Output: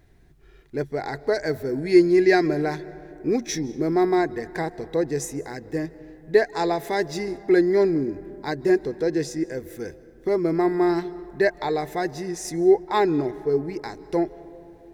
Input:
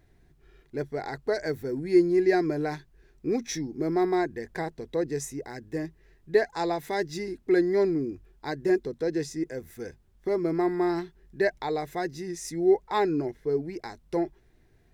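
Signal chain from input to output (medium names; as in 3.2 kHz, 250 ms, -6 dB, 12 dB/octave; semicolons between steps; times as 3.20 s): 1.78–2.48 s: peaking EQ 3.3 kHz +6 dB 2.7 oct; on a send: reverberation RT60 3.2 s, pre-delay 115 ms, DRR 17.5 dB; on the sum: trim +4.5 dB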